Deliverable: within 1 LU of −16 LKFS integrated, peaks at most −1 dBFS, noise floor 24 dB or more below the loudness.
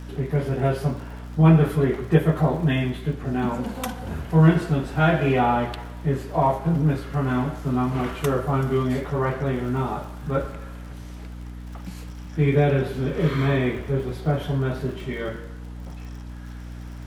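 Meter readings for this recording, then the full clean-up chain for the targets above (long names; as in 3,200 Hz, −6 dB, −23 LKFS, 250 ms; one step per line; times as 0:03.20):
crackle rate 49 per second; mains hum 60 Hz; hum harmonics up to 300 Hz; level of the hum −34 dBFS; integrated loudness −23.0 LKFS; sample peak −4.0 dBFS; target loudness −16.0 LKFS
→ click removal
hum removal 60 Hz, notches 5
level +7 dB
brickwall limiter −1 dBFS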